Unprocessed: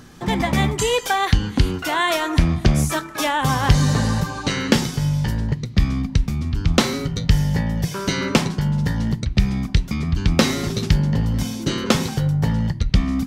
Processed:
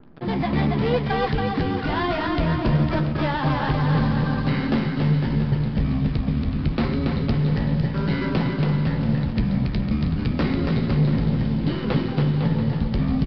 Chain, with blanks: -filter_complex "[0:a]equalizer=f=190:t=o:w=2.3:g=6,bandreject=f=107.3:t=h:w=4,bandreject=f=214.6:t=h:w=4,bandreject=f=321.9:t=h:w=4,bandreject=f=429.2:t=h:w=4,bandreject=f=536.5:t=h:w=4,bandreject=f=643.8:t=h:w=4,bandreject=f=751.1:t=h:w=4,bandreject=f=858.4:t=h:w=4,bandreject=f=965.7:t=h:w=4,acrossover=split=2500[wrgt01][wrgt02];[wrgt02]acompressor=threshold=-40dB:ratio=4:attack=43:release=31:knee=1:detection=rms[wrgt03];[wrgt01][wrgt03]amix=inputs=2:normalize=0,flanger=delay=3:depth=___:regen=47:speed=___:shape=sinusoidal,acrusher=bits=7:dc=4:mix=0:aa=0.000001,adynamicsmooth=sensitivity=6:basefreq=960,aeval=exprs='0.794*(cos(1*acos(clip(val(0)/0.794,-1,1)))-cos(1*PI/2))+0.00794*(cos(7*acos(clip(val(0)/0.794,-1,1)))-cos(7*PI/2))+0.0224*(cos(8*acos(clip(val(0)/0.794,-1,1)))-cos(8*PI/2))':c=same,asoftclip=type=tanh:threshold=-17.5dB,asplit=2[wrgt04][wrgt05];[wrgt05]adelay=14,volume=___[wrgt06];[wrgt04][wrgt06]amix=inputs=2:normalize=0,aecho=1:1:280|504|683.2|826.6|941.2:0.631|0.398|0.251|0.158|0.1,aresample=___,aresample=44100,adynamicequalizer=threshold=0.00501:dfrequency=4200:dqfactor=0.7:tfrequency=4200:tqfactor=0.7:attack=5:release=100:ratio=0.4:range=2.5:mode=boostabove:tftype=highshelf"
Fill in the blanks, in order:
5.8, 1.7, -11dB, 11025